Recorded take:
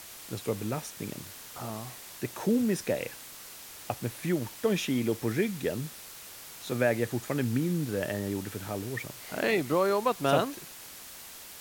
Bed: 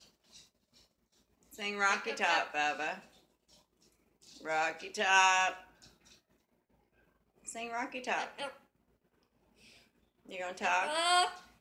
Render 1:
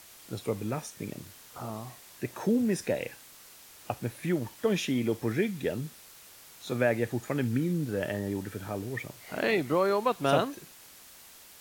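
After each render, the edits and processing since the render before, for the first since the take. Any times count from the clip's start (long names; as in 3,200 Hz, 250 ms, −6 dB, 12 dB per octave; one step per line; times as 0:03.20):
noise reduction from a noise print 6 dB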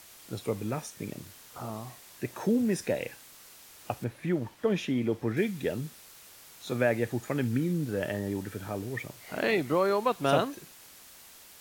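0:04.04–0:05.37: high-shelf EQ 4,200 Hz −11.5 dB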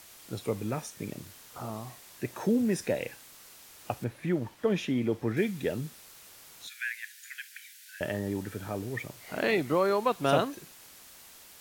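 0:06.67–0:08.01: Butterworth high-pass 1,500 Hz 96 dB per octave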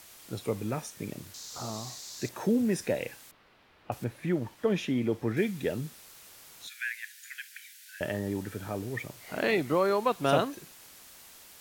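0:01.34–0:02.29: flat-topped bell 5,300 Hz +14 dB 1.2 octaves
0:03.31–0:03.92: high-frequency loss of the air 380 metres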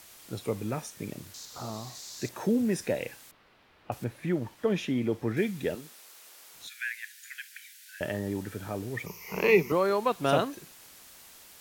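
0:01.45–0:01.95: parametric band 6,500 Hz −6 dB 1.2 octaves
0:05.75–0:06.54: high-pass filter 360 Hz
0:09.06–0:09.72: EQ curve with evenly spaced ripples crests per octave 0.8, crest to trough 17 dB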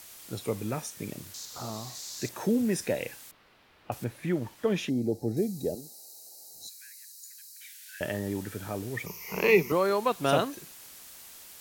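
0:04.89–0:07.61: gain on a spectral selection 870–3,800 Hz −23 dB
high-shelf EQ 4,700 Hz +5 dB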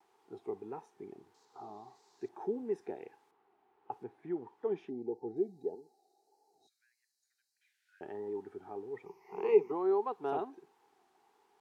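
pair of resonant band-passes 570 Hz, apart 1 octave
pitch vibrato 1.6 Hz 67 cents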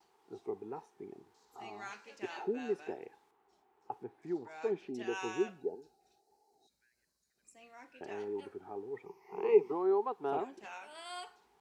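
mix in bed −17 dB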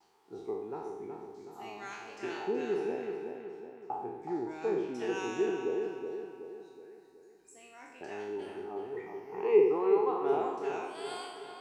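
peak hold with a decay on every bin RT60 0.93 s
on a send: feedback echo with a low-pass in the loop 372 ms, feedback 49%, low-pass 3,300 Hz, level −6 dB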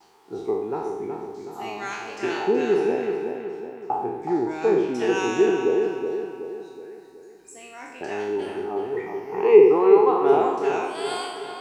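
level +11.5 dB
brickwall limiter −3 dBFS, peak gain reduction 1 dB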